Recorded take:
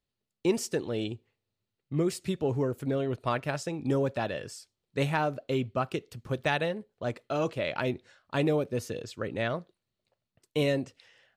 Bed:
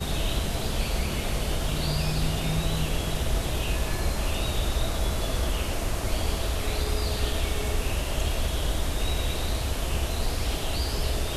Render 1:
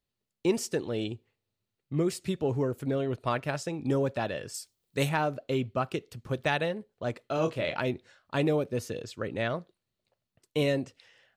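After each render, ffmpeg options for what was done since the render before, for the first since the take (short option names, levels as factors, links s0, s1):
-filter_complex "[0:a]asettb=1/sr,asplit=3[s0][s1][s2];[s0]atrim=end=4.544[s3];[s1]atrim=start=4.54:end=5.09,asetpts=PTS-STARTPTS,afade=t=in:d=0.004:c=qsin,afade=t=out:st=0.546:d=0.004:c=qsin,aemphasis=mode=production:type=50kf[s4];[s2]atrim=start=5.086[s5];[s3][s4]acrossfade=d=0.004:c1=hsin:c2=qsin[s6];[s6][s5]acrossfade=d=0.004:c1=qsin:c2=hsin,asettb=1/sr,asplit=3[s7][s8][s9];[s7]atrim=end=7.354[s10];[s8]atrim=start=7.35:end=7.78,asetpts=PTS-STARTPTS,afade=t=in:d=0.004:c=qsin,afade=t=out:st=0.426:d=0.004:c=qsin,asplit=2[s11][s12];[s12]adelay=25,volume=0.447[s13];[s11][s13]amix=inputs=2:normalize=0,atrim=end_sample=18963[s14];[s9]atrim=start=7.776[s15];[s10][s14]acrossfade=d=0.004:c1=hsin:c2=qsin[s16];[s16][s15]acrossfade=d=0.004:c1=qsin:c2=hsin"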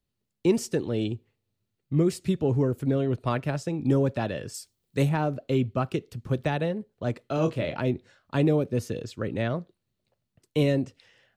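-filter_complex "[0:a]acrossover=split=350|960[s0][s1][s2];[s0]acontrast=78[s3];[s2]alimiter=limit=0.0708:level=0:latency=1:release=436[s4];[s3][s1][s4]amix=inputs=3:normalize=0"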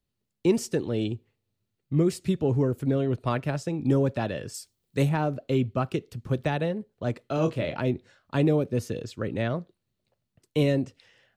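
-af anull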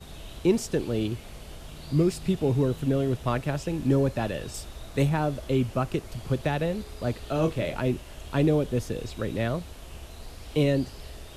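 -filter_complex "[1:a]volume=0.178[s0];[0:a][s0]amix=inputs=2:normalize=0"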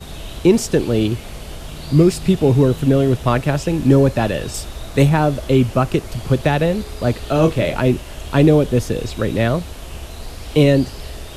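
-af "volume=3.35,alimiter=limit=0.794:level=0:latency=1"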